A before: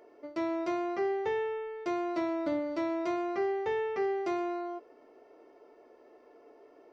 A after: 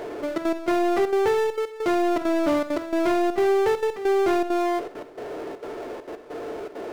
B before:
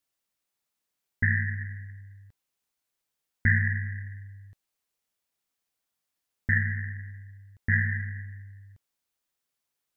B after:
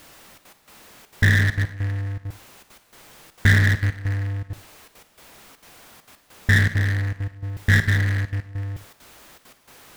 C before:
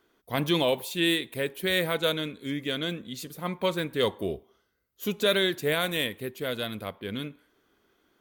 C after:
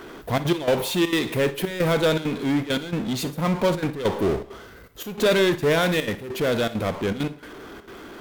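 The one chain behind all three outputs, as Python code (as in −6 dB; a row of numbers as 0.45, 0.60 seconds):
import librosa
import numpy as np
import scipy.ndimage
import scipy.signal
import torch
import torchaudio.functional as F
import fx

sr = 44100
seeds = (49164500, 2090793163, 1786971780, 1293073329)

y = fx.high_shelf(x, sr, hz=3100.0, db=-12.0)
y = fx.power_curve(y, sr, exponent=0.5)
y = fx.step_gate(y, sr, bpm=200, pattern='xxxxx.x..xxxxx.', floor_db=-12.0, edge_ms=4.5)
y = fx.rev_schroeder(y, sr, rt60_s=0.32, comb_ms=38, drr_db=13.5)
y = y * 10.0 ** (-24 / 20.0) / np.sqrt(np.mean(np.square(y)))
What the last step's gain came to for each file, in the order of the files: +6.5, +4.5, +2.5 decibels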